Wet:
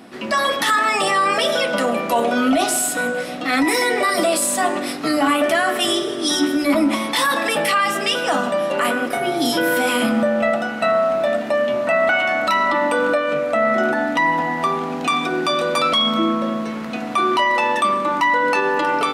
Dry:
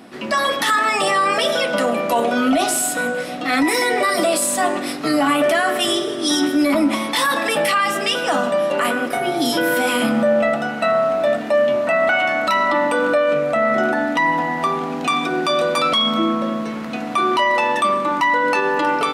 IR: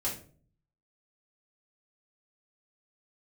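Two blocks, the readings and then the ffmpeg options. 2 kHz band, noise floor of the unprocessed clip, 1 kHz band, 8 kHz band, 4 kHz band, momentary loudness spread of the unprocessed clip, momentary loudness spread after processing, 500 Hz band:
0.0 dB, -27 dBFS, 0.0 dB, 0.0 dB, 0.0 dB, 4 LU, 4 LU, -1.0 dB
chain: -af "bandreject=f=147.9:t=h:w=4,bandreject=f=295.8:t=h:w=4,bandreject=f=443.7:t=h:w=4,bandreject=f=591.6:t=h:w=4,bandreject=f=739.5:t=h:w=4,bandreject=f=887.4:t=h:w=4,bandreject=f=1.0353k:t=h:w=4"

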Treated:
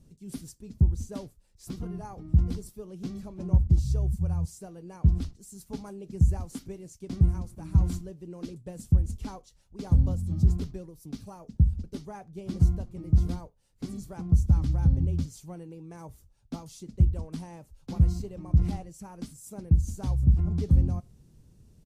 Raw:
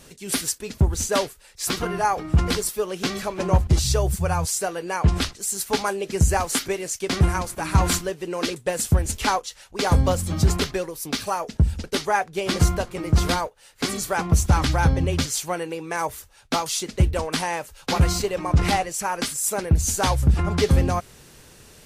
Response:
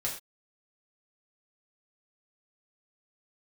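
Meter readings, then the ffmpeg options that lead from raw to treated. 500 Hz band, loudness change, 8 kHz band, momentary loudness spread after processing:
-17.5 dB, -4.0 dB, -23.0 dB, 18 LU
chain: -filter_complex "[0:a]firequalizer=gain_entry='entry(150,0);entry(450,-16);entry(1600,-27);entry(5500,-20)':delay=0.05:min_phase=1,asplit=2[a][b];[1:a]atrim=start_sample=2205,asetrate=57330,aresample=44100,lowpass=8.2k[c];[b][c]afir=irnorm=-1:irlink=0,volume=-20dB[d];[a][d]amix=inputs=2:normalize=0,volume=-3dB"

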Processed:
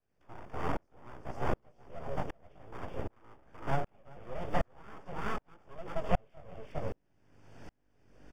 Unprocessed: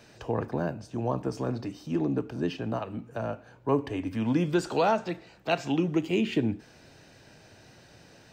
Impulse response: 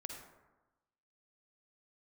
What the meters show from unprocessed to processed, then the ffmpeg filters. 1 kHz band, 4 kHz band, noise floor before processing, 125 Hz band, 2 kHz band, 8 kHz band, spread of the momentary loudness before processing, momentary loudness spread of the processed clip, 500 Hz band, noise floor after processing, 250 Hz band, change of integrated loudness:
-6.0 dB, -13.5 dB, -55 dBFS, -8.5 dB, -7.0 dB, -13.5 dB, 10 LU, 18 LU, -10.0 dB, -74 dBFS, -16.0 dB, -9.5 dB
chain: -filter_complex "[0:a]acrossover=split=110[a][b];[a]aeval=exprs='(mod(355*val(0)+1,2)-1)/355':c=same[c];[c][b]amix=inputs=2:normalize=0,aeval=exprs='val(0)+0.00224*(sin(2*PI*50*n/s)+sin(2*PI*2*50*n/s)/2+sin(2*PI*3*50*n/s)/3+sin(2*PI*4*50*n/s)/4+sin(2*PI*5*50*n/s)/5)':c=same,highshelf=f=2.1k:g=-11.5,acrossover=split=2600[d][e];[e]acompressor=threshold=-59dB:ratio=4:attack=1:release=60[f];[d][f]amix=inputs=2:normalize=0,flanger=delay=15:depth=6.7:speed=0.68,aecho=1:1:380:0.447,acrossover=split=260|820|1800[g][h][i][j];[g]acompressor=threshold=-39dB:ratio=4[k];[h]acompressor=threshold=-31dB:ratio=4[l];[i]acompressor=threshold=-48dB:ratio=4[m];[j]acompressor=threshold=-57dB:ratio=4[n];[k][l][m][n]amix=inputs=4:normalize=0,bandreject=f=79.38:t=h:w=4,bandreject=f=158.76:t=h:w=4,bandreject=f=238.14:t=h:w=4,asplit=2[o][p];[1:a]atrim=start_sample=2205[q];[p][q]afir=irnorm=-1:irlink=0,volume=-12dB[r];[o][r]amix=inputs=2:normalize=0,aeval=exprs='abs(val(0))':c=same,asuperstop=centerf=4000:order=4:qfactor=4.6,aeval=exprs='val(0)*pow(10,-38*if(lt(mod(-1.3*n/s,1),2*abs(-1.3)/1000),1-mod(-1.3*n/s,1)/(2*abs(-1.3)/1000),(mod(-1.3*n/s,1)-2*abs(-1.3)/1000)/(1-2*abs(-1.3)/1000))/20)':c=same,volume=8.5dB"

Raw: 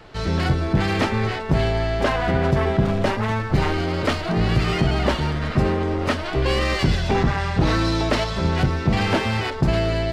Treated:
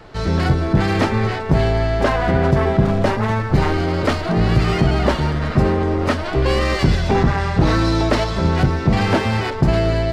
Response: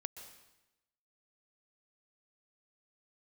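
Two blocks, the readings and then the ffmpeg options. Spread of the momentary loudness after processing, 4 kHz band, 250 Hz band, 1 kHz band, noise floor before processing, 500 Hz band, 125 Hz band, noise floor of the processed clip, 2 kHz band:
3 LU, 0.0 dB, +4.0 dB, +3.5 dB, -28 dBFS, +4.0 dB, +4.0 dB, -25 dBFS, +2.0 dB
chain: -filter_complex "[0:a]asplit=2[a][b];[1:a]atrim=start_sample=2205,asetrate=32634,aresample=44100,lowpass=f=3.2k:w=0.5412,lowpass=f=3.2k:w=1.3066[c];[b][c]afir=irnorm=-1:irlink=0,volume=-8.5dB[d];[a][d]amix=inputs=2:normalize=0,volume=1.5dB"

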